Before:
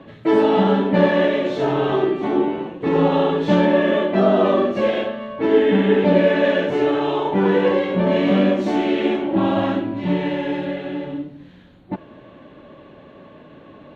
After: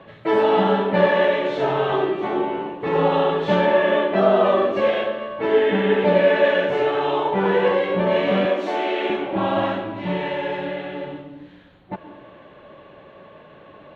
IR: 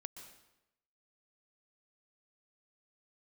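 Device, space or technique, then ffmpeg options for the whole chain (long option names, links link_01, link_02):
filtered reverb send: -filter_complex "[0:a]asettb=1/sr,asplit=3[link_01][link_02][link_03];[link_01]atrim=end=8.454[link_04];[link_02]atrim=start=8.45:end=9.1,asetpts=PTS-STARTPTS,afade=type=in:duration=0.004:curve=qsin,afade=type=out:start_time=0.646:duration=0.004:curve=qsin,highpass=frequency=270:width=0.5412,highpass=frequency=270:width=1.3066[link_05];[link_03]atrim=start=9.096[link_06];[link_04][link_05]acrossfade=duration=0.004:curve1=hsin:curve2=qsin[link_07];[link_07][link_06]acrossfade=duration=0.004:curve1=qsin:curve2=hsin,asplit=2[link_08][link_09];[link_09]highpass=frequency=270:width=0.5412,highpass=frequency=270:width=1.3066,lowpass=4200[link_10];[1:a]atrim=start_sample=2205[link_11];[link_10][link_11]afir=irnorm=-1:irlink=0,volume=4dB[link_12];[link_08][link_12]amix=inputs=2:normalize=0,volume=-4dB"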